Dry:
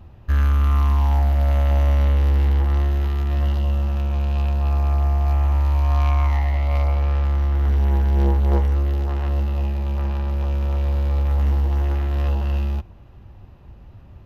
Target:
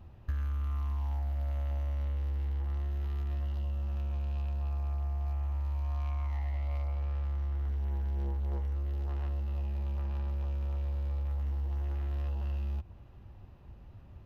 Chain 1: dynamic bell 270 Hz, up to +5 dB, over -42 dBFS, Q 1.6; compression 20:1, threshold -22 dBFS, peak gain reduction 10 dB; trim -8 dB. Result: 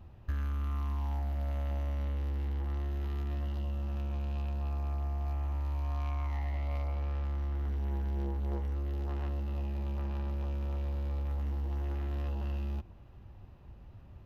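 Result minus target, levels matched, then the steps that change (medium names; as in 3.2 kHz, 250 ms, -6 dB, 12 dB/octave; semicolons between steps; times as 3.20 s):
250 Hz band +6.5 dB
change: dynamic bell 81 Hz, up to +5 dB, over -42 dBFS, Q 1.6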